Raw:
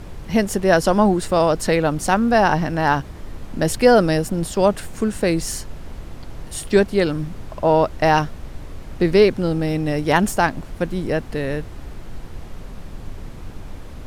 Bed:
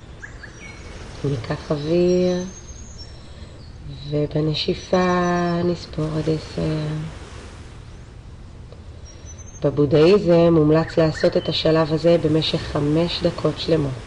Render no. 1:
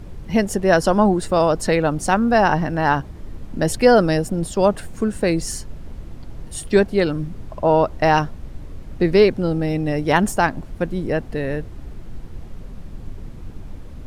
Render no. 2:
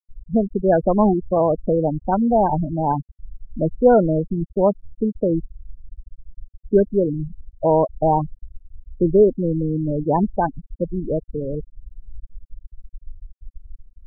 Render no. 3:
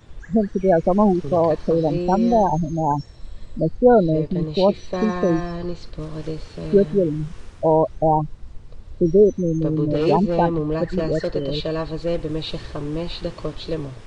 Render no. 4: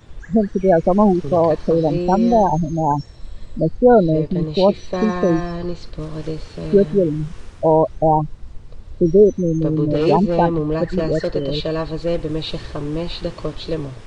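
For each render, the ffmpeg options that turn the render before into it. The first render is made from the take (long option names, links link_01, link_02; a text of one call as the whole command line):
ffmpeg -i in.wav -af "afftdn=noise_reduction=7:noise_floor=-36" out.wav
ffmpeg -i in.wav -af "lowpass=1100,afftfilt=real='re*gte(hypot(re,im),0.316)':imag='im*gte(hypot(re,im),0.316)':win_size=1024:overlap=0.75" out.wav
ffmpeg -i in.wav -i bed.wav -filter_complex "[1:a]volume=-8dB[link_01];[0:a][link_01]amix=inputs=2:normalize=0" out.wav
ffmpeg -i in.wav -af "volume=2.5dB,alimiter=limit=-2dB:level=0:latency=1" out.wav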